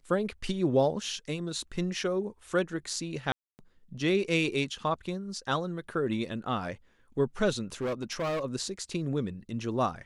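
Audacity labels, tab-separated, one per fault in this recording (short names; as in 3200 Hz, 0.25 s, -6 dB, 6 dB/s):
3.320000	3.590000	gap 0.269 s
7.810000	8.430000	clipped -28 dBFS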